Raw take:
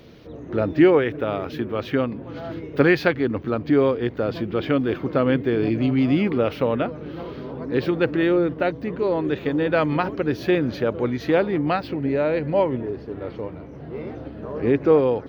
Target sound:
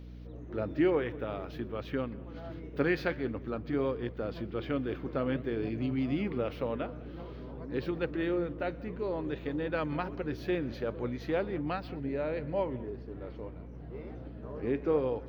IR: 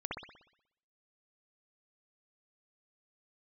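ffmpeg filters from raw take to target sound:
-filter_complex "[0:a]asplit=2[a][b];[1:a]atrim=start_sample=2205,atrim=end_sample=4410,adelay=125[c];[b][c]afir=irnorm=-1:irlink=0,volume=-21dB[d];[a][d]amix=inputs=2:normalize=0,flanger=delay=0.7:depth=9.9:regen=-83:speed=0.51:shape=sinusoidal,aeval=exprs='val(0)+0.0141*(sin(2*PI*60*n/s)+sin(2*PI*2*60*n/s)/2+sin(2*PI*3*60*n/s)/3+sin(2*PI*4*60*n/s)/4+sin(2*PI*5*60*n/s)/5)':c=same,volume=-7.5dB"

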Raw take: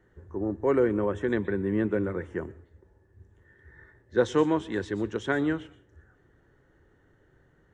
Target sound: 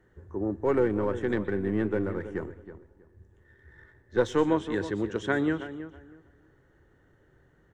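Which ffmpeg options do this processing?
-filter_complex "[0:a]asplit=3[a][b][c];[a]afade=t=out:st=0.64:d=0.02[d];[b]aeval=exprs='if(lt(val(0),0),0.708*val(0),val(0))':c=same,afade=t=in:st=0.64:d=0.02,afade=t=out:st=4.46:d=0.02[e];[c]afade=t=in:st=4.46:d=0.02[f];[d][e][f]amix=inputs=3:normalize=0,asplit=2[g][h];[h]adelay=321,lowpass=f=2k:p=1,volume=-12dB,asplit=2[i][j];[j]adelay=321,lowpass=f=2k:p=1,volume=0.22,asplit=2[k][l];[l]adelay=321,lowpass=f=2k:p=1,volume=0.22[m];[g][i][k][m]amix=inputs=4:normalize=0"

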